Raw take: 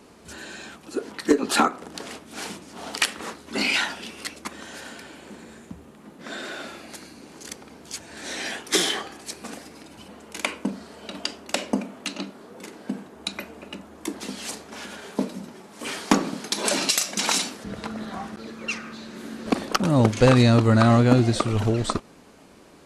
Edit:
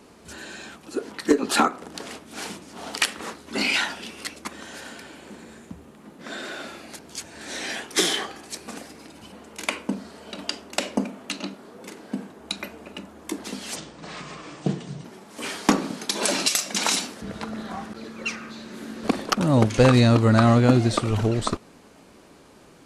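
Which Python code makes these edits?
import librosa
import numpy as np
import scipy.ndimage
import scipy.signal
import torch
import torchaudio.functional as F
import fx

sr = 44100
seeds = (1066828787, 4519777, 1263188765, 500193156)

y = fx.edit(x, sr, fx.cut(start_s=6.99, length_s=0.76),
    fx.speed_span(start_s=14.52, length_s=0.95, speed=0.74), tone=tone)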